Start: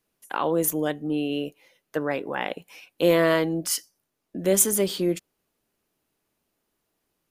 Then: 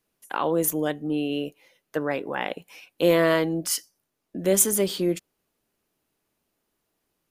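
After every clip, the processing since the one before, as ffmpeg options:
-af anull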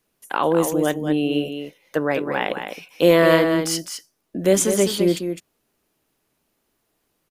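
-filter_complex "[0:a]acrossover=split=7300[a][b];[b]acompressor=threshold=-36dB:ratio=4:attack=1:release=60[c];[a][c]amix=inputs=2:normalize=0,aecho=1:1:207:0.422,volume=5dB"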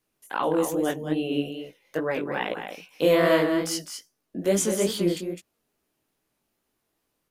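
-af "flanger=delay=15.5:depth=6.5:speed=2.4,volume=-2.5dB"

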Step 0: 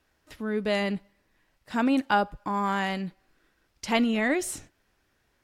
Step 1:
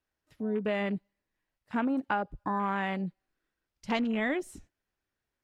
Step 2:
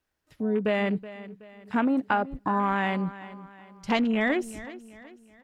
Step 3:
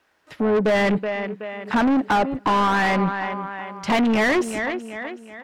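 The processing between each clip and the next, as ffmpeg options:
-af "afwtdn=0.0178,acompressor=threshold=-26dB:ratio=6"
-af "aecho=1:1:374|748|1122|1496:0.158|0.0666|0.028|0.0117,volume=5dB"
-filter_complex "[0:a]asplit=2[a][b];[b]highpass=f=720:p=1,volume=28dB,asoftclip=type=tanh:threshold=-11dB[c];[a][c]amix=inputs=2:normalize=0,lowpass=f=1.9k:p=1,volume=-6dB,asoftclip=type=hard:threshold=-14dB"

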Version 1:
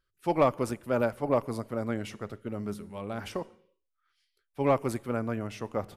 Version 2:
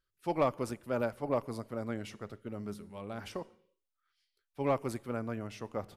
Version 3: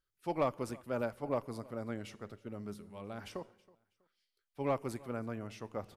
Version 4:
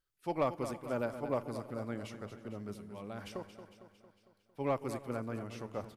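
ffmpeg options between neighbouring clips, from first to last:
-af "equalizer=f=4.6k:w=1.5:g=2.5,volume=-5.5dB"
-af "aecho=1:1:323|646:0.0708|0.0205,volume=-3dB"
-af "aecho=1:1:227|454|681|908|1135|1362:0.282|0.161|0.0916|0.0522|0.0298|0.017"

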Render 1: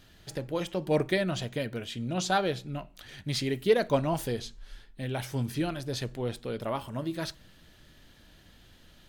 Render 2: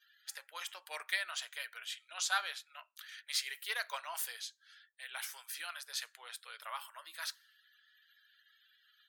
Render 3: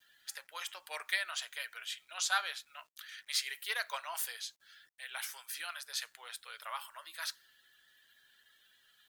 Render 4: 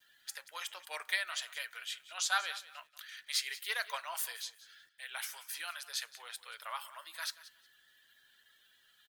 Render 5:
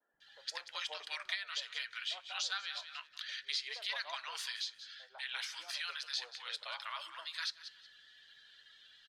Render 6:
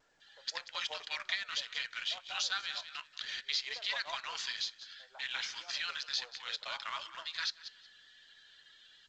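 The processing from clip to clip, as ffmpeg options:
-af "highpass=f=1.3k:w=0.5412,highpass=f=1.3k:w=1.3066,equalizer=f=3.1k:w=0.38:g=-8.5,afftdn=nr=31:nf=-68,volume=6dB"
-af "acrusher=bits=11:mix=0:aa=0.000001,volume=1.5dB"
-af "aecho=1:1:182|364:0.141|0.0283"
-filter_complex "[0:a]lowpass=f=4.5k:t=q:w=2,acrossover=split=180[a][b];[b]acompressor=threshold=-40dB:ratio=4[c];[a][c]amix=inputs=2:normalize=0,acrossover=split=250|950[d][e][f];[d]adelay=130[g];[f]adelay=200[h];[g][e][h]amix=inputs=3:normalize=0,volume=3.5dB"
-filter_complex "[0:a]asplit=2[a][b];[b]acrusher=bits=6:mix=0:aa=0.000001,volume=-8dB[c];[a][c]amix=inputs=2:normalize=0" -ar 16000 -c:a pcm_alaw

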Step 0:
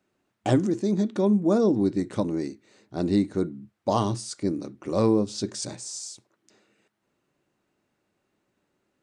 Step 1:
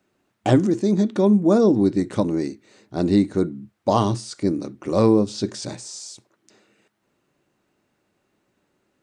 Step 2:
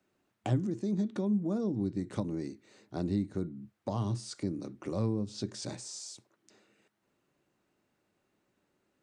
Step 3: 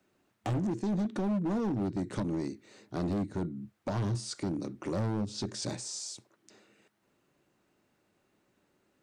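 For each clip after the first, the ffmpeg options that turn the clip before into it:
-filter_complex "[0:a]acrossover=split=4900[a][b];[b]acompressor=threshold=-43dB:ratio=4:attack=1:release=60[c];[a][c]amix=inputs=2:normalize=0,volume=5dB"
-filter_complex "[0:a]acrossover=split=180[a][b];[b]acompressor=threshold=-28dB:ratio=6[c];[a][c]amix=inputs=2:normalize=0,volume=-7dB"
-af "asoftclip=type=hard:threshold=-31.5dB,volume=4dB"

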